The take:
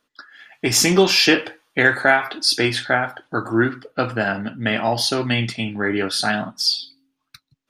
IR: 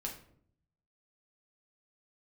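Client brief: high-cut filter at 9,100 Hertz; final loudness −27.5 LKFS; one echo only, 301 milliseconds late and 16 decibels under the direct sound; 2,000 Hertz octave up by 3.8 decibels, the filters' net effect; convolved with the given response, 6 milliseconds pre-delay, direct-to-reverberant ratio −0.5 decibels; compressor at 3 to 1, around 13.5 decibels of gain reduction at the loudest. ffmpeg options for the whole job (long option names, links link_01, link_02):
-filter_complex "[0:a]lowpass=9100,equalizer=frequency=2000:width_type=o:gain=5,acompressor=threshold=-26dB:ratio=3,aecho=1:1:301:0.158,asplit=2[link_01][link_02];[1:a]atrim=start_sample=2205,adelay=6[link_03];[link_02][link_03]afir=irnorm=-1:irlink=0,volume=0.5dB[link_04];[link_01][link_04]amix=inputs=2:normalize=0,volume=-4dB"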